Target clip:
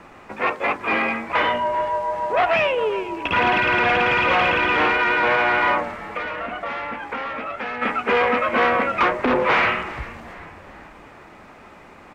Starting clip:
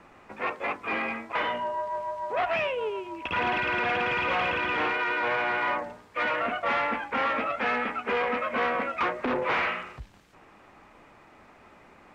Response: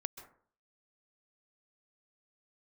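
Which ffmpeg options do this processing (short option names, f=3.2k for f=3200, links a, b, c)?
-filter_complex "[0:a]asplit=3[a][b][c];[a]afade=t=out:st=6.04:d=0.02[d];[b]acompressor=threshold=-35dB:ratio=6,afade=t=in:st=6.04:d=0.02,afade=t=out:st=7.81:d=0.02[e];[c]afade=t=in:st=7.81:d=0.02[f];[d][e][f]amix=inputs=3:normalize=0,asplit=2[g][h];[h]asplit=5[i][j][k][l][m];[i]adelay=391,afreqshift=-140,volume=-17dB[n];[j]adelay=782,afreqshift=-280,volume=-22.4dB[o];[k]adelay=1173,afreqshift=-420,volume=-27.7dB[p];[l]adelay=1564,afreqshift=-560,volume=-33.1dB[q];[m]adelay=1955,afreqshift=-700,volume=-38.4dB[r];[n][o][p][q][r]amix=inputs=5:normalize=0[s];[g][s]amix=inputs=2:normalize=0,volume=8.5dB"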